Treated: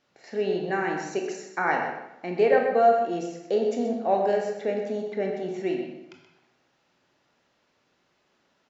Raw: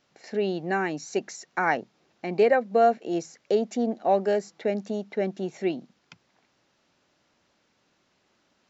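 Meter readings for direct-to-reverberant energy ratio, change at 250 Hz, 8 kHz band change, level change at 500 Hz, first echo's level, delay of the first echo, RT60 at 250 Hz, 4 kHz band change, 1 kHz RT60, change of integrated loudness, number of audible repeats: 0.5 dB, -1.0 dB, no reading, +1.0 dB, -10.0 dB, 127 ms, 0.85 s, -1.5 dB, 0.90 s, +0.5 dB, 1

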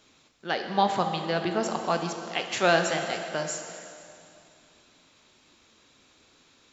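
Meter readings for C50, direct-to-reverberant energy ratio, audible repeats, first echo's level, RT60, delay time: 6.0 dB, 4.5 dB, no echo, no echo, 2.6 s, no echo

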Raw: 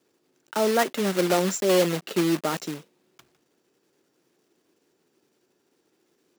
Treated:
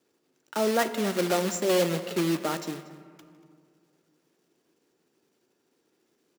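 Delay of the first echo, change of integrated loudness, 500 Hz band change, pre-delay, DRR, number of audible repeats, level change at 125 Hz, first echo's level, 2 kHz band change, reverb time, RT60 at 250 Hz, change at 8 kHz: 236 ms, -3.0 dB, -3.0 dB, 4 ms, 10.0 dB, 1, -2.5 dB, -18.5 dB, -2.5 dB, 2.1 s, 2.4 s, -3.0 dB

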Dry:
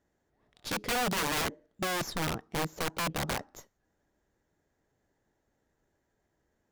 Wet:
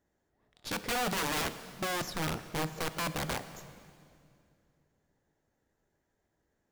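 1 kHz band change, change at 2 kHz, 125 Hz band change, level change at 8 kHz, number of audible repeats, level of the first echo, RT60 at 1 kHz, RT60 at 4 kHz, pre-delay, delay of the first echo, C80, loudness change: -1.5 dB, -1.5 dB, -1.0 dB, -1.5 dB, no echo, no echo, 2.2 s, 2.2 s, 8 ms, no echo, 13.0 dB, -1.5 dB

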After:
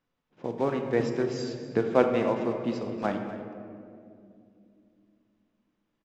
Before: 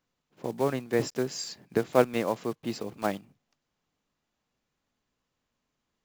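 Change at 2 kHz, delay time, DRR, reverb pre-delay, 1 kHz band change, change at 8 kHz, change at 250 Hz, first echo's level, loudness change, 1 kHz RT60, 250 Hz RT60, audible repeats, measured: 0.0 dB, 244 ms, 3.5 dB, 3 ms, +1.0 dB, under -10 dB, +3.0 dB, -14.5 dB, +1.0 dB, 2.0 s, 3.9 s, 1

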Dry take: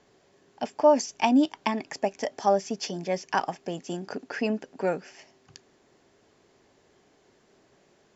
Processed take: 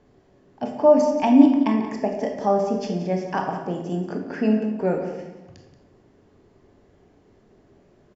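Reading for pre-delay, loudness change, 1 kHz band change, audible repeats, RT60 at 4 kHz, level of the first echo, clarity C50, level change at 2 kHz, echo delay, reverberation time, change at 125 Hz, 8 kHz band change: 20 ms, +6.0 dB, +2.0 dB, 1, 0.65 s, -12.5 dB, 4.0 dB, -1.5 dB, 179 ms, 1.1 s, +9.5 dB, no reading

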